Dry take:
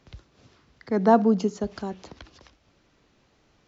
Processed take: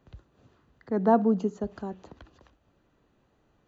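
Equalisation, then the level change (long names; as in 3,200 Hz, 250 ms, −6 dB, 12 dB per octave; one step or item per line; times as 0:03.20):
parametric band 4,900 Hz −10 dB 2.1 octaves
notch filter 2,200 Hz, Q 7.7
notch filter 5,300 Hz, Q 6.8
−3.0 dB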